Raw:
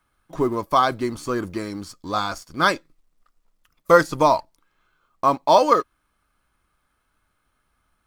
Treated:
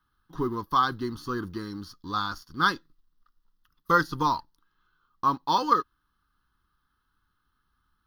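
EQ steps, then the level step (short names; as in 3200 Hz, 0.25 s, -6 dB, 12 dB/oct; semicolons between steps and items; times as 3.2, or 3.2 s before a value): fixed phaser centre 2300 Hz, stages 6; -3.0 dB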